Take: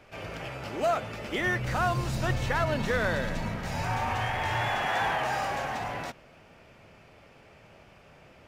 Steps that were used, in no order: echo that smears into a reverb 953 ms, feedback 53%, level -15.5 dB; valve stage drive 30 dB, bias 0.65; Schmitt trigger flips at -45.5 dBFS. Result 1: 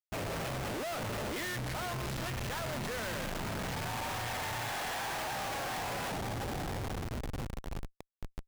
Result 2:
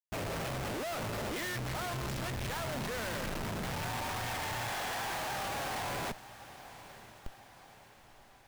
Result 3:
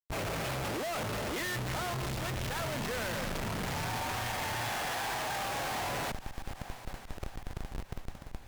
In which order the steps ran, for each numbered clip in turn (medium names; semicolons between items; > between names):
echo that smears into a reverb > valve stage > Schmitt trigger; valve stage > Schmitt trigger > echo that smears into a reverb; Schmitt trigger > echo that smears into a reverb > valve stage